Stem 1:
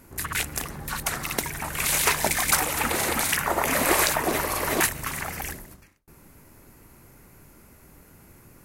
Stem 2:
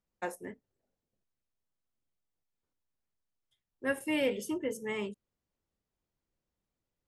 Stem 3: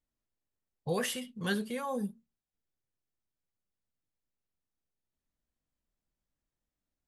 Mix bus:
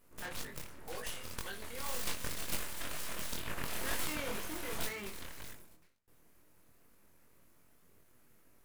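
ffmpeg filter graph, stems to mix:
ffmpeg -i stem1.wav -i stem2.wav -i stem3.wav -filter_complex "[0:a]aeval=exprs='abs(val(0))':channel_layout=same,bandreject=frequency=790:width=12,volume=-10dB[link_01];[1:a]equalizer=frequency=1700:width=1.2:gain=12,aeval=exprs='(tanh(50.1*val(0)+0.6)-tanh(0.6))/50.1':channel_layout=same,volume=-3dB[link_02];[2:a]highpass=550,acompressor=threshold=-37dB:ratio=6,volume=-2.5dB[link_03];[link_01][link_02][link_03]amix=inputs=3:normalize=0,flanger=delay=20:depth=5.4:speed=2" out.wav

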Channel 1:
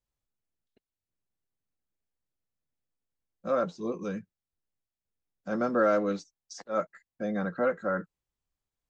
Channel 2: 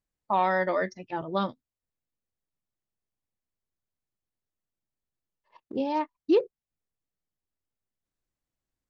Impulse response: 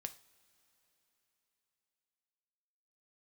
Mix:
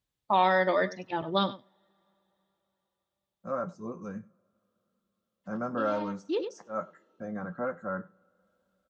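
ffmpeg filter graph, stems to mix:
-filter_complex "[0:a]flanger=delay=7.1:depth=3.2:regen=-69:speed=0.28:shape=triangular,firequalizer=gain_entry='entry(170,0);entry(290,-8);entry(470,-8);entry(990,-1);entry(3500,-23);entry(6000,-7)':delay=0.05:min_phase=1,volume=1.5dB,asplit=4[link_01][link_02][link_03][link_04];[link_02]volume=-4dB[link_05];[link_03]volume=-20dB[link_06];[1:a]equalizer=frequency=3500:width=2.3:gain=9,volume=-1dB,asplit=3[link_07][link_08][link_09];[link_08]volume=-10dB[link_10];[link_09]volume=-15dB[link_11];[link_04]apad=whole_len=392129[link_12];[link_07][link_12]sidechaincompress=threshold=-58dB:ratio=8:attack=16:release=322[link_13];[2:a]atrim=start_sample=2205[link_14];[link_05][link_10]amix=inputs=2:normalize=0[link_15];[link_15][link_14]afir=irnorm=-1:irlink=0[link_16];[link_06][link_11]amix=inputs=2:normalize=0,aecho=0:1:98:1[link_17];[link_01][link_13][link_16][link_17]amix=inputs=4:normalize=0,highpass=49"

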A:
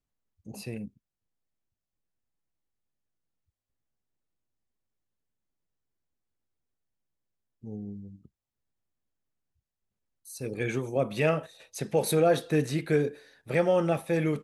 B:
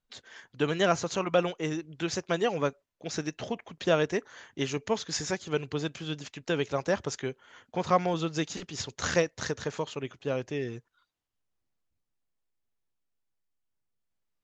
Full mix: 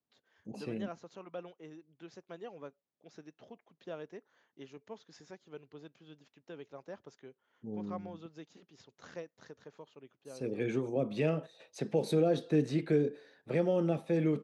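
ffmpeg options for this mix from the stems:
ffmpeg -i stem1.wav -i stem2.wav -filter_complex "[0:a]acrossover=split=410|3000[link_01][link_02][link_03];[link_02]acompressor=threshold=-40dB:ratio=2.5[link_04];[link_01][link_04][link_03]amix=inputs=3:normalize=0,volume=1dB[link_05];[1:a]volume=-17dB[link_06];[link_05][link_06]amix=inputs=2:normalize=0,highpass=180,lowpass=3900,equalizer=frequency=2300:width_type=o:width=2.2:gain=-6" out.wav

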